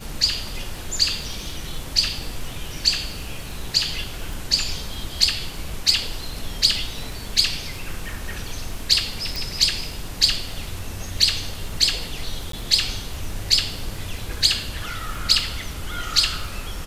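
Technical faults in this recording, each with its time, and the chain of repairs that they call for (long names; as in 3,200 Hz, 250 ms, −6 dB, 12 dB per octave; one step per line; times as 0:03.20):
surface crackle 42 per second −33 dBFS
0:04.33: click
0:09.36: click
0:12.52–0:12.53: drop-out 13 ms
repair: click removal
repair the gap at 0:12.52, 13 ms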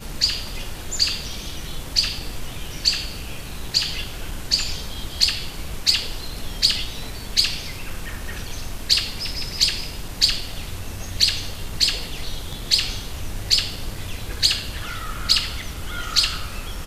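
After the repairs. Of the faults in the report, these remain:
0:09.36: click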